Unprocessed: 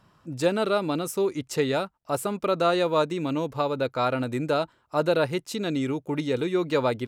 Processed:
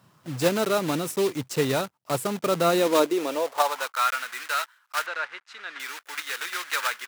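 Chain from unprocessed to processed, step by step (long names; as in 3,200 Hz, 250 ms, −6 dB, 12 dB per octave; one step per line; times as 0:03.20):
one scale factor per block 3 bits
low-shelf EQ 110 Hz −10 dB
high-pass filter sweep 120 Hz → 1,500 Hz, 0:02.39–0:04.06
0:05.06–0:05.80: head-to-tape spacing loss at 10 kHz 27 dB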